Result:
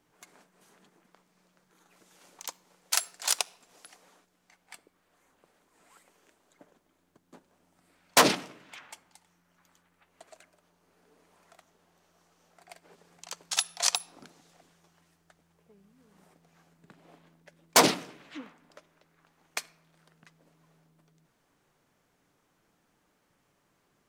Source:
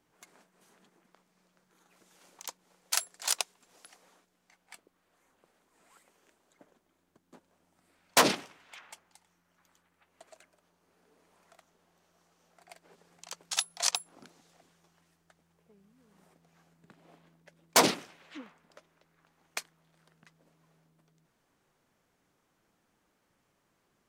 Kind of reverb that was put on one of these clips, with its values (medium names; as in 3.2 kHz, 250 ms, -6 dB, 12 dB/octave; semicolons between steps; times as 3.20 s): simulated room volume 2800 m³, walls furnished, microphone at 0.38 m; trim +2.5 dB